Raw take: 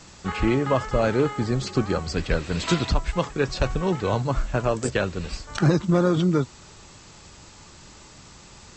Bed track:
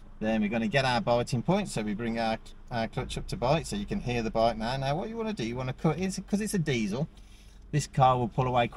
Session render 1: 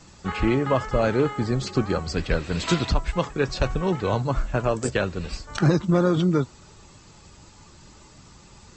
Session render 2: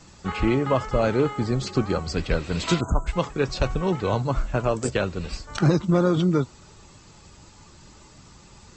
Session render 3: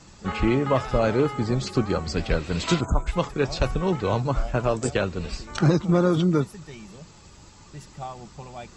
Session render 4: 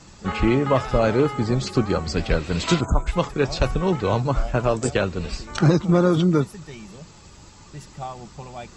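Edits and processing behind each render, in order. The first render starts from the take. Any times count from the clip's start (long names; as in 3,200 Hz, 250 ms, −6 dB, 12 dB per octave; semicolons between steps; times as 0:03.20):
broadband denoise 6 dB, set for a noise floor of −48 dBFS
0:02.80–0:03.07: time-frequency box erased 1,600–6,200 Hz; dynamic equaliser 1,700 Hz, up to −5 dB, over −49 dBFS, Q 7.4
mix in bed track −14 dB
level +2.5 dB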